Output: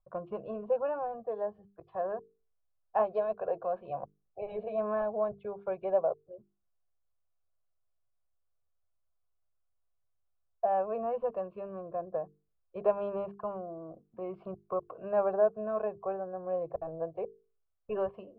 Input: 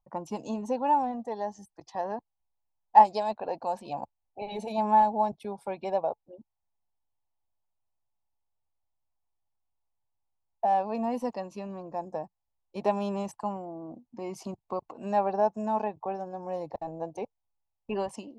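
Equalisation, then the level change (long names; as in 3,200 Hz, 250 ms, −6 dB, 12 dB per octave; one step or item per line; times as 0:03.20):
Chebyshev low-pass filter 1,800 Hz, order 3
mains-hum notches 50/100/150/200/250/300/350/400/450 Hz
phaser with its sweep stopped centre 1,300 Hz, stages 8
+3.0 dB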